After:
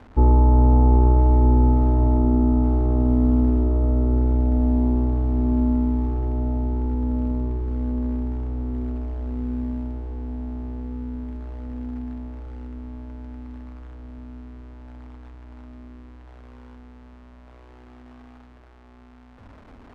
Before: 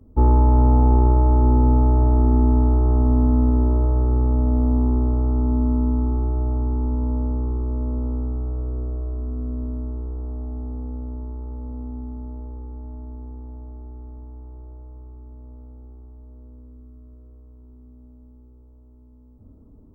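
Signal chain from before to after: switching spikes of -18.5 dBFS; LPF 1100 Hz 12 dB/oct; diffused feedback echo 1.748 s, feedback 53%, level -11 dB

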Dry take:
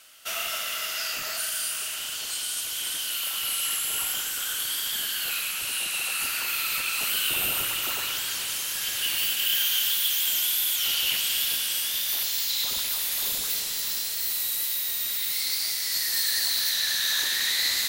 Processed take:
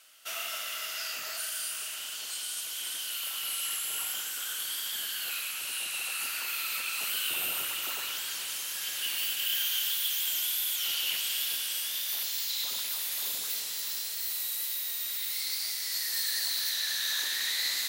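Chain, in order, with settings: HPF 310 Hz 6 dB/oct; gain -5.5 dB

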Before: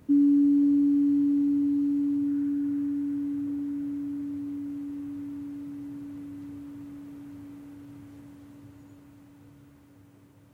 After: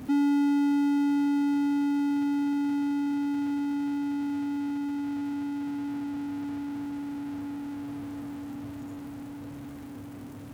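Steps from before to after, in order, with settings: bell 250 Hz +14.5 dB 0.2 oct; power-law curve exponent 0.5; gain -8.5 dB

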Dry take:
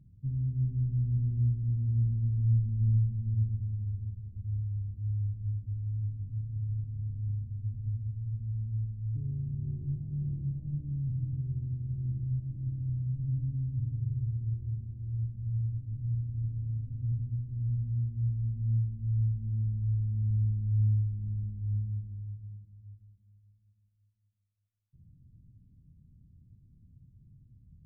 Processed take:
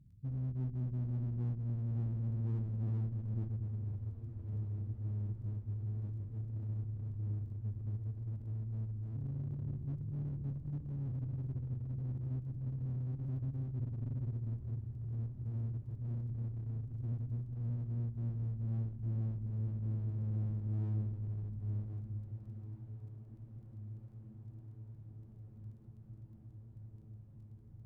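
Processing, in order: one-sided clip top -33.5 dBFS, bottom -23.5 dBFS; crackle 14/s -61 dBFS; diffused feedback echo 1.886 s, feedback 74%, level -14.5 dB; core saturation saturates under 130 Hz; gain -4 dB

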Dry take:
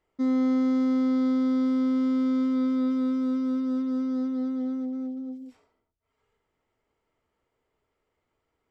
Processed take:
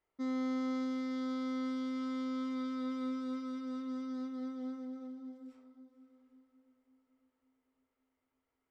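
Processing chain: tilt shelf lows -5 dB, about 720 Hz; on a send: diffused feedback echo 0.482 s, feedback 48%, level -12.5 dB; on the sum: mismatched tape noise reduction decoder only; gain -8 dB

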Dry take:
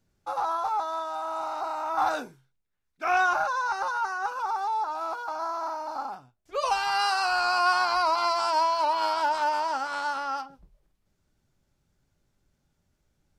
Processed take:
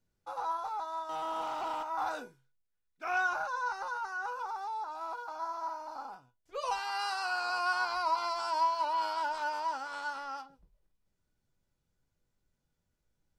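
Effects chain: 1.09–1.83 sample leveller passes 2; 6.79–7.5 steep high-pass 190 Hz 36 dB/oct; resonator 490 Hz, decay 0.16 s, harmonics all, mix 70%

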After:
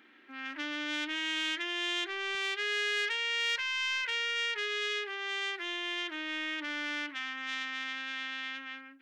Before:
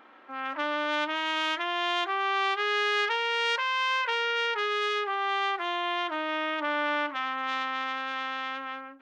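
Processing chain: HPF 200 Hz 6 dB/oct, from 2.35 s 390 Hz; soft clip -17.5 dBFS, distortion -22 dB; band shelf 800 Hz -15.5 dB

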